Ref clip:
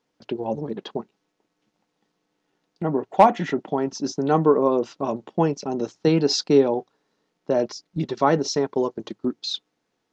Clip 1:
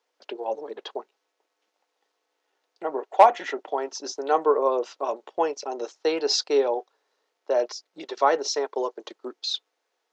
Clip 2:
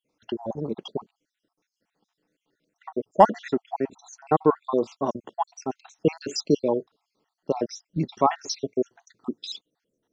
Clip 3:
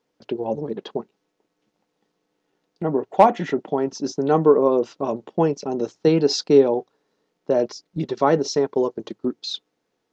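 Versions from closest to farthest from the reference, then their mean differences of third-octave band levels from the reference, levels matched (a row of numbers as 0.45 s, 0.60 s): 3, 1, 2; 1.5 dB, 6.0 dB, 8.0 dB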